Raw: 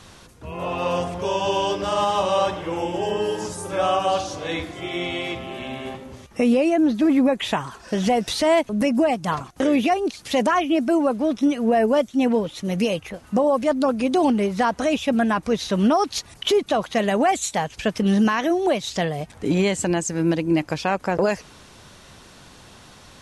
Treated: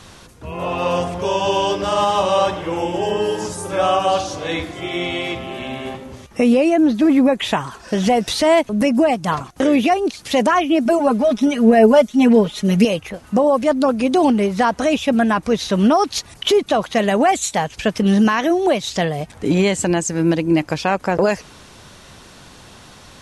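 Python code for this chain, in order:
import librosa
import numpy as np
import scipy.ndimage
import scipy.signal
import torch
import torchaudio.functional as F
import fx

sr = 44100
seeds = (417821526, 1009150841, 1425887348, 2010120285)

y = fx.comb(x, sr, ms=4.8, depth=0.97, at=(10.85, 12.85))
y = y * librosa.db_to_amplitude(4.0)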